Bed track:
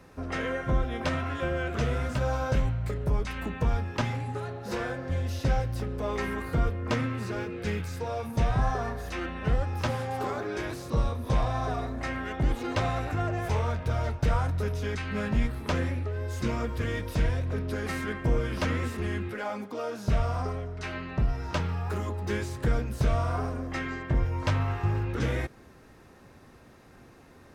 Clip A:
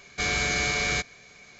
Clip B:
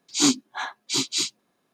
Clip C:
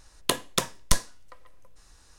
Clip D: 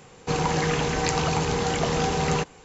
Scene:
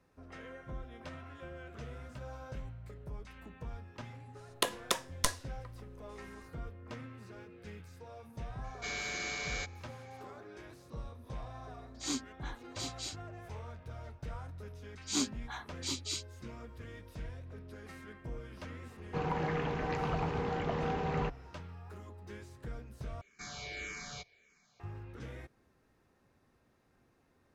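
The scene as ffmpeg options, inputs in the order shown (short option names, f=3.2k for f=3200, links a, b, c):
-filter_complex "[1:a]asplit=2[a][b];[2:a]asplit=2[c][d];[0:a]volume=-17.5dB[e];[3:a]bass=f=250:g=-11,treble=f=4k:g=-3[f];[a]equalizer=f=67:w=0.7:g=-12.5[g];[4:a]lowpass=2.2k[h];[b]asplit=2[i][j];[j]afreqshift=-1.7[k];[i][k]amix=inputs=2:normalize=1[l];[e]asplit=2[m][n];[m]atrim=end=23.214[o];[l]atrim=end=1.59,asetpts=PTS-STARTPTS,volume=-14.5dB[p];[n]atrim=start=24.796[q];[f]atrim=end=2.18,asetpts=PTS-STARTPTS,volume=-4.5dB,afade=t=in:d=0.05,afade=t=out:st=2.13:d=0.05,adelay=190953S[r];[g]atrim=end=1.59,asetpts=PTS-STARTPTS,volume=-12dB,afade=t=in:d=0.004:c=hsin,afade=t=out:st=1.586:d=0.004:c=hsin,adelay=8640[s];[c]atrim=end=1.73,asetpts=PTS-STARTPTS,volume=-17dB,afade=t=in:d=0.004:c=hsin,afade=t=out:st=1.726:d=0.004:c=hsin,adelay=523026S[t];[d]atrim=end=1.73,asetpts=PTS-STARTPTS,volume=-13dB,afade=t=in:d=0.004:c=hsin,afade=t=out:st=1.726:d=0.004:c=hsin,adelay=14930[u];[h]atrim=end=2.64,asetpts=PTS-STARTPTS,volume=-9.5dB,afade=t=in:d=0.004:c=hsin,afade=t=out:st=2.636:d=0.004:c=hsin,adelay=18860[v];[o][p]acrossfade=d=0.004:c1=hsin:c2=hsin[w];[w][q]acrossfade=d=0.004:c1=hsin:c2=hsin[x];[x][r][s][t][u][v]amix=inputs=6:normalize=0"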